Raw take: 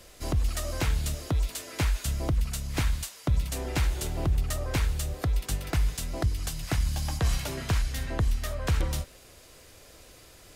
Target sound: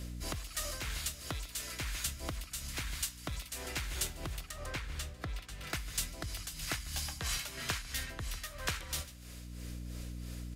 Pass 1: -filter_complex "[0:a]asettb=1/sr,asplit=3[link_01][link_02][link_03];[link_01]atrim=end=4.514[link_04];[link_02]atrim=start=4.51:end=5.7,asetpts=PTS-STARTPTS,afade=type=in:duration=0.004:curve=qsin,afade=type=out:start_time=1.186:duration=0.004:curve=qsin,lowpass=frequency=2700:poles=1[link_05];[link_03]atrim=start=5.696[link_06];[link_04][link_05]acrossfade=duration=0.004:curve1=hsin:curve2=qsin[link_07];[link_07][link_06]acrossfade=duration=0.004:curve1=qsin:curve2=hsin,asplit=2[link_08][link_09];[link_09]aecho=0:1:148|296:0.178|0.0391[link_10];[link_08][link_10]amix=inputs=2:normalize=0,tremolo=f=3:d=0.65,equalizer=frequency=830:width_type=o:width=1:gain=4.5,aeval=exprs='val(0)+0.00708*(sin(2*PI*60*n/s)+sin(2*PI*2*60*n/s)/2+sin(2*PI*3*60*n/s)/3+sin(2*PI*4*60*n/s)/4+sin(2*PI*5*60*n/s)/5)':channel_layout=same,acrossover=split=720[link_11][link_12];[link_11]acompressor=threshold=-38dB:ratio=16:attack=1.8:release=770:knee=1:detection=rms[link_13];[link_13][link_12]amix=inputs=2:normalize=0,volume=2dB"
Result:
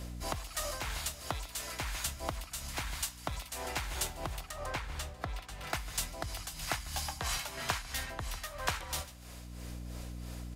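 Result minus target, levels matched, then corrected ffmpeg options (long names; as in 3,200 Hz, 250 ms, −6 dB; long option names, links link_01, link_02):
1,000 Hz band +6.5 dB
-filter_complex "[0:a]asettb=1/sr,asplit=3[link_01][link_02][link_03];[link_01]atrim=end=4.514[link_04];[link_02]atrim=start=4.51:end=5.7,asetpts=PTS-STARTPTS,afade=type=in:duration=0.004:curve=qsin,afade=type=out:start_time=1.186:duration=0.004:curve=qsin,lowpass=frequency=2700:poles=1[link_05];[link_03]atrim=start=5.696[link_06];[link_04][link_05]acrossfade=duration=0.004:curve1=hsin:curve2=qsin[link_07];[link_07][link_06]acrossfade=duration=0.004:curve1=qsin:curve2=hsin,asplit=2[link_08][link_09];[link_09]aecho=0:1:148|296:0.178|0.0391[link_10];[link_08][link_10]amix=inputs=2:normalize=0,tremolo=f=3:d=0.65,equalizer=frequency=830:width_type=o:width=1:gain=-6.5,aeval=exprs='val(0)+0.00708*(sin(2*PI*60*n/s)+sin(2*PI*2*60*n/s)/2+sin(2*PI*3*60*n/s)/3+sin(2*PI*4*60*n/s)/4+sin(2*PI*5*60*n/s)/5)':channel_layout=same,acrossover=split=720[link_11][link_12];[link_11]acompressor=threshold=-38dB:ratio=16:attack=1.8:release=770:knee=1:detection=rms[link_13];[link_13][link_12]amix=inputs=2:normalize=0,volume=2dB"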